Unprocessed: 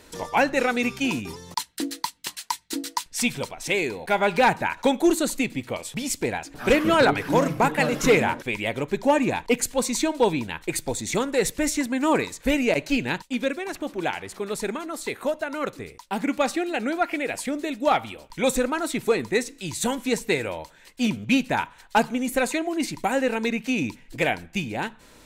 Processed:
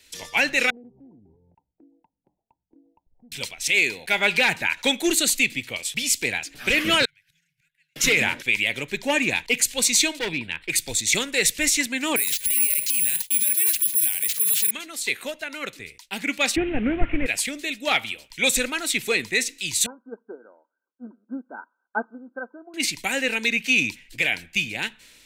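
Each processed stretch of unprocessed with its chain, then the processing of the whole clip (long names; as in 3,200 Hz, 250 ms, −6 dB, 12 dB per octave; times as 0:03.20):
0:00.70–0:03.32: Butterworth low-pass 860 Hz 72 dB per octave + downward compressor 2.5 to 1, threshold −44 dBFS
0:07.05–0:07.96: gate with flip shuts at −20 dBFS, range −37 dB + linear-phase brick-wall band-stop 180–1,400 Hz
0:10.19–0:10.70: moving average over 7 samples + hard clipping −20 dBFS
0:12.16–0:14.71: compressor whose output falls as the input rises −25 dBFS, ratio −0.5 + bad sample-rate conversion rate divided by 4×, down none, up zero stuff
0:16.56–0:17.26: linear delta modulator 16 kbit/s, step −32 dBFS + spectral tilt −4.5 dB per octave
0:19.86–0:22.74: linear-phase brick-wall band-pass 200–1,600 Hz + low-shelf EQ 440 Hz −3.5 dB + expander for the loud parts, over −42 dBFS
whole clip: high shelf with overshoot 1,600 Hz +13 dB, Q 1.5; brickwall limiter −4.5 dBFS; multiband upward and downward expander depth 40%; level −4.5 dB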